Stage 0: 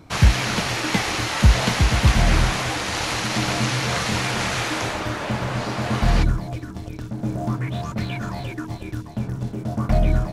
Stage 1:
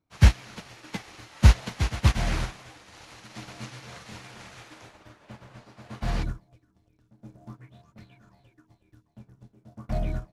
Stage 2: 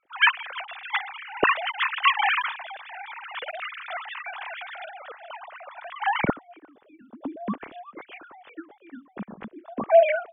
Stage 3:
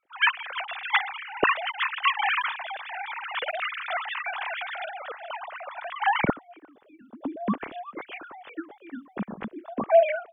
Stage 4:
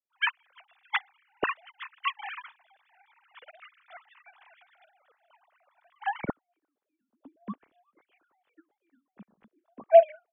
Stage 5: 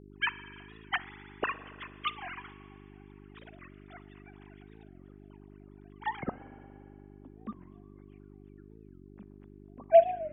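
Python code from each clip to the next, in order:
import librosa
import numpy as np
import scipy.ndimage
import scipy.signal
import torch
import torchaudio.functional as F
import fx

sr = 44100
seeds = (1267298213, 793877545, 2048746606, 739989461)

y1 = fx.upward_expand(x, sr, threshold_db=-31.0, expansion=2.5)
y2 = fx.sine_speech(y1, sr)
y3 = fx.rider(y2, sr, range_db=4, speed_s=0.5)
y4 = fx.upward_expand(y3, sr, threshold_db=-35.0, expansion=2.5)
y4 = y4 * 10.0 ** (3.0 / 20.0)
y5 = fx.rev_spring(y4, sr, rt60_s=2.4, pass_ms=(40, 57), chirp_ms=45, drr_db=13.5)
y5 = fx.dmg_buzz(y5, sr, base_hz=50.0, harmonics=8, level_db=-49.0, tilt_db=-1, odd_only=False)
y5 = fx.record_warp(y5, sr, rpm=45.0, depth_cents=160.0)
y5 = y5 * 10.0 ** (-3.5 / 20.0)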